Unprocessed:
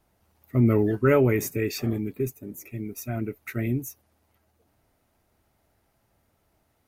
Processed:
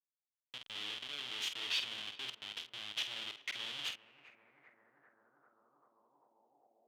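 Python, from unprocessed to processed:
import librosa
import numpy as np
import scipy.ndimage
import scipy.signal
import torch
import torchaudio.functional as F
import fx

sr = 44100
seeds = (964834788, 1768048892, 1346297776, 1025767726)

y = fx.peak_eq(x, sr, hz=77.0, db=11.0, octaves=0.64)
y = fx.over_compress(y, sr, threshold_db=-24.0, ratio=-0.5)
y = fx.schmitt(y, sr, flips_db=-31.0)
y = fx.doubler(y, sr, ms=48.0, db=-8.0)
y = fx.echo_tape(y, sr, ms=394, feedback_pct=82, wet_db=-15.0, lp_hz=1300.0, drive_db=19.0, wow_cents=16)
y = fx.filter_sweep_bandpass(y, sr, from_hz=3200.0, to_hz=730.0, start_s=3.83, end_s=6.78, q=6.0)
y = y * 10.0 ** (8.5 / 20.0)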